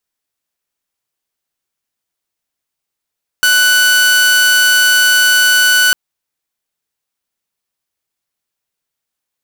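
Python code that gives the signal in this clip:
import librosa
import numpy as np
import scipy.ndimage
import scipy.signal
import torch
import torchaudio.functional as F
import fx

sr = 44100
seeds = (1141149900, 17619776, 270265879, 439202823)

y = 10.0 ** (-5.0 / 20.0) * (2.0 * np.mod(1490.0 * (np.arange(round(2.5 * sr)) / sr), 1.0) - 1.0)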